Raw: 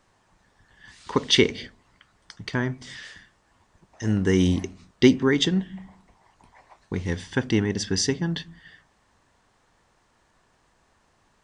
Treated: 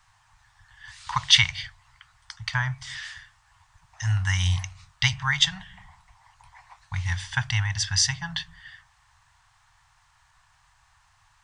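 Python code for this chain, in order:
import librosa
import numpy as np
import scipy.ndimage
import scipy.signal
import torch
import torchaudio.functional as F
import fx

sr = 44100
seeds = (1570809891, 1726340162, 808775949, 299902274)

y = scipy.signal.sosfilt(scipy.signal.cheby2(4, 50, [220.0, 480.0], 'bandstop', fs=sr, output='sos'), x)
y = y * librosa.db_to_amplitude(4.0)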